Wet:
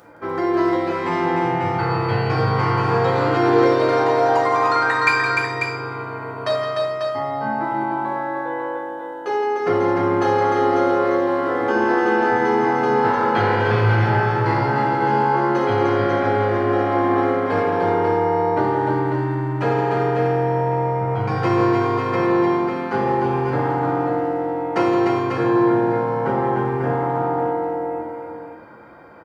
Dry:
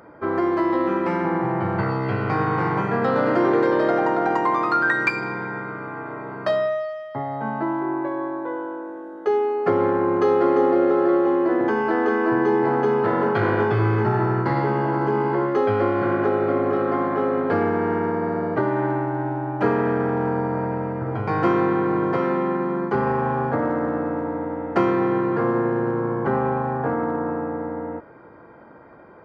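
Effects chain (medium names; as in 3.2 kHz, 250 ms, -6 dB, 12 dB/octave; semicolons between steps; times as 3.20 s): treble shelf 2.8 kHz +12 dB; on a send: multi-tap echo 166/299/543 ms -9.5/-4/-6 dB; on the sum: gated-style reverb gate 180 ms falling, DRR -1.5 dB; trim -4.5 dB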